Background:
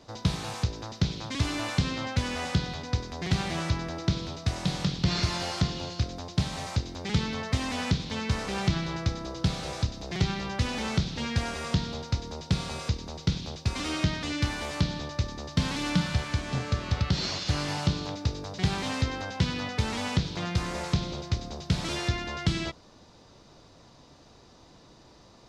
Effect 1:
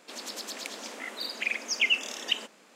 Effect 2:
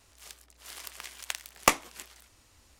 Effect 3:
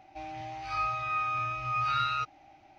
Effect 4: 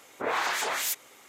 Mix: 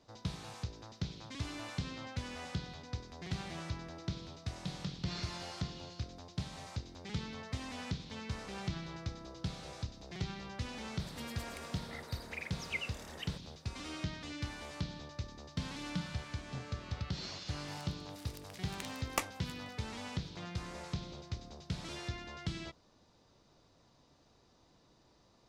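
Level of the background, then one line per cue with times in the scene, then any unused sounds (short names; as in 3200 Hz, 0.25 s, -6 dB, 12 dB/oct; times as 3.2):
background -12.5 dB
10.91 add 1 -8.5 dB + band shelf 4200 Hz -10 dB
17.5 add 2 -12.5 dB
not used: 3, 4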